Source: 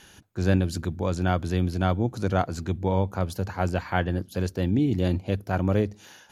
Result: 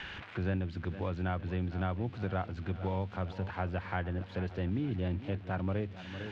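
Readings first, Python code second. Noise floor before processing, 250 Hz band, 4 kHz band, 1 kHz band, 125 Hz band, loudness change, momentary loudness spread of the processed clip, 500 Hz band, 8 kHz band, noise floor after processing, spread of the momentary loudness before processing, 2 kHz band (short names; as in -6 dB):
-53 dBFS, -10.0 dB, -9.5 dB, -9.5 dB, -8.5 dB, -9.5 dB, 4 LU, -10.5 dB, under -25 dB, -47 dBFS, 5 LU, -7.0 dB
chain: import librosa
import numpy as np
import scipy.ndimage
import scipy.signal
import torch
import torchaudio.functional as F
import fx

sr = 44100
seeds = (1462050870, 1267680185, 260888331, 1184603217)

y = x + 0.5 * 10.0 ** (-25.5 / 20.0) * np.diff(np.sign(x), prepend=np.sign(x[:1]))
y = scipy.signal.sosfilt(scipy.signal.butter(4, 3000.0, 'lowpass', fs=sr, output='sos'), y)
y = fx.peak_eq(y, sr, hz=340.0, db=-3.5, octaves=2.6)
y = fx.echo_feedback(y, sr, ms=455, feedback_pct=57, wet_db=-16.5)
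y = fx.band_squash(y, sr, depth_pct=70)
y = F.gain(torch.from_numpy(y), -8.0).numpy()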